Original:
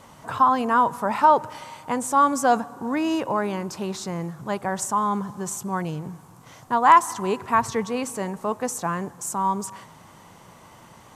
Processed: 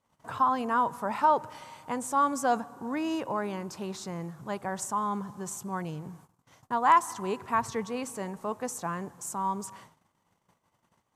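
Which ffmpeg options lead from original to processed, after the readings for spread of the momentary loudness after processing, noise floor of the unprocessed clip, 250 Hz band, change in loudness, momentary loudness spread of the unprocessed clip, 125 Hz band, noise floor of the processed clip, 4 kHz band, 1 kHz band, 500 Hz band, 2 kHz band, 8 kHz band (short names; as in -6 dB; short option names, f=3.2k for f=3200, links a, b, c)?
12 LU, -49 dBFS, -7.0 dB, -7.0 dB, 12 LU, -7.0 dB, -75 dBFS, -7.0 dB, -7.0 dB, -7.0 dB, -7.0 dB, -7.0 dB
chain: -af "agate=range=-23dB:threshold=-45dB:ratio=16:detection=peak,volume=-7dB"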